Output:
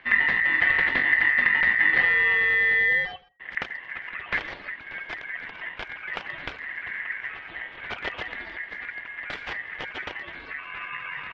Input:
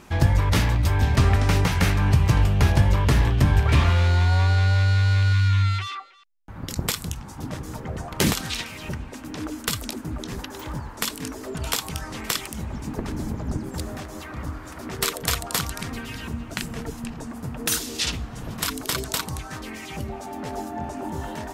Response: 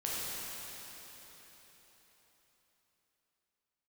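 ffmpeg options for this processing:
-filter_complex "[0:a]atempo=1.9,aeval=exprs='val(0)*sin(2*PI*1900*n/s)':channel_layout=same,lowpass=frequency=3000:width=0.5412,lowpass=frequency=3000:width=1.3066,asplit=2[link_01][link_02];[link_02]adelay=82,lowpass=frequency=1600:poles=1,volume=-21dB,asplit=2[link_03][link_04];[link_04]adelay=82,lowpass=frequency=1600:poles=1,volume=0.32[link_05];[link_03][link_05]amix=inputs=2:normalize=0[link_06];[link_01][link_06]amix=inputs=2:normalize=0"

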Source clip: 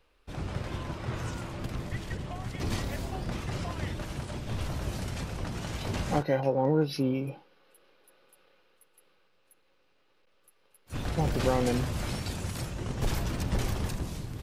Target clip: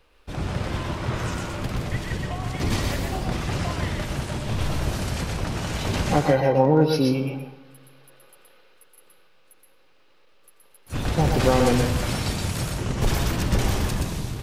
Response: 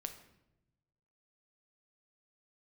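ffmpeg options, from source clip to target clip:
-filter_complex "[0:a]asplit=2[link_01][link_02];[1:a]atrim=start_sample=2205,lowshelf=frequency=450:gain=-9,adelay=122[link_03];[link_02][link_03]afir=irnorm=-1:irlink=0,volume=0.5dB[link_04];[link_01][link_04]amix=inputs=2:normalize=0,volume=7dB"

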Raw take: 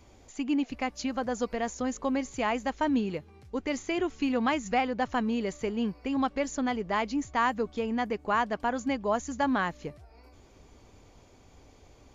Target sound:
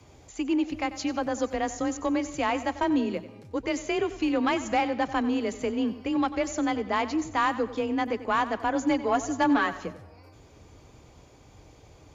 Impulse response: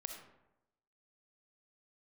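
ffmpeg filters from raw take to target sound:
-filter_complex "[0:a]afreqshift=28,asettb=1/sr,asplit=3[link_01][link_02][link_03];[link_01]atrim=end=8.744[link_04];[link_02]atrim=start=8.74:end=9.85,asetpts=PTS-STARTPTS,afade=type=in:duration=0.004:curve=qsin,afade=type=out:start_time=1.106:duration=0.004:curve=qsin,aecho=1:1:7.1:0.68,atrim=end_sample=48951[link_05];[link_03]atrim=start=9.846[link_06];[link_04][link_05]acrossfade=duration=0.004:curve1=hsin:curve2=qsin[link_07];[link_07][link_06]acrossfade=duration=0.004:curve1=qsin:curve2=hsin,aeval=exprs='0.266*(cos(1*acos(clip(val(0)/0.266,-1,1)))-cos(1*PI/2))+0.0188*(cos(5*acos(clip(val(0)/0.266,-1,1)))-cos(5*PI/2))':channel_layout=same,asplit=2[link_08][link_09];[1:a]atrim=start_sample=2205,adelay=93[link_10];[link_09][link_10]afir=irnorm=-1:irlink=0,volume=-11dB[link_11];[link_08][link_11]amix=inputs=2:normalize=0"

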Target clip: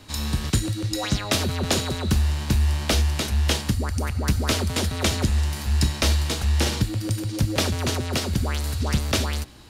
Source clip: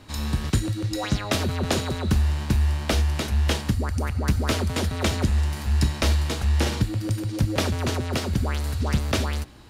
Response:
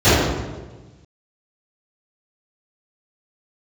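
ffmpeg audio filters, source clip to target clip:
-filter_complex "[0:a]acrossover=split=710|2900[link_01][link_02][link_03];[link_03]acontrast=32[link_04];[link_01][link_02][link_04]amix=inputs=3:normalize=0,asettb=1/sr,asplit=3[link_05][link_06][link_07];[link_05]atrim=end=2.474[link_08];[link_06]atrim=start=2.47:end=3.09,asetpts=PTS-STARTPTS,afade=type=in:duration=0.004:curve=qsin,afade=type=out:start_time=0.616:duration=0.004:curve=qsin,aeval=exprs='0.355*(cos(1*acos(clip(val(0)/0.355,-1,1)))-cos(1*PI/2))+0.0126*(cos(5*acos(clip(val(0)/0.355,-1,1)))-cos(5*PI/2))':channel_layout=same[link_09];[link_07]atrim=start=3.086[link_10];[link_08][link_09]acrossfade=duration=0.004:curve1=hsin:curve2=qsin[link_11];[link_11][link_10]acrossfade=duration=0.004:curve1=qsin:curve2=hsin"

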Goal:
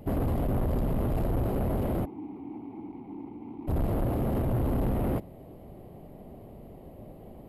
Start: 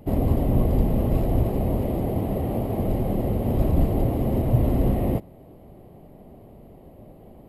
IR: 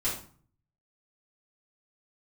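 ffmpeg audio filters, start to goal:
-filter_complex "[0:a]asoftclip=type=tanh:threshold=-24dB,asplit=3[link_01][link_02][link_03];[link_01]afade=type=out:start_time=2.04:duration=0.02[link_04];[link_02]asplit=3[link_05][link_06][link_07];[link_05]bandpass=frequency=300:width_type=q:width=8,volume=0dB[link_08];[link_06]bandpass=frequency=870:width_type=q:width=8,volume=-6dB[link_09];[link_07]bandpass=frequency=2240:width_type=q:width=8,volume=-9dB[link_10];[link_08][link_09][link_10]amix=inputs=3:normalize=0,afade=type=in:start_time=2.04:duration=0.02,afade=type=out:start_time=3.67:duration=0.02[link_11];[link_03]afade=type=in:start_time=3.67:duration=0.02[link_12];[link_04][link_11][link_12]amix=inputs=3:normalize=0"

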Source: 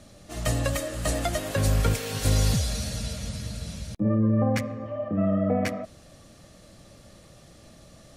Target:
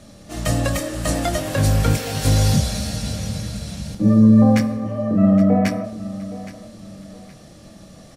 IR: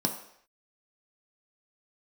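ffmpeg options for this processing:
-filter_complex "[0:a]aecho=1:1:819|1638|2457:0.158|0.0523|0.0173,asplit=2[link_01][link_02];[1:a]atrim=start_sample=2205,adelay=23[link_03];[link_02][link_03]afir=irnorm=-1:irlink=0,volume=-13.5dB[link_04];[link_01][link_04]amix=inputs=2:normalize=0,volume=4dB"

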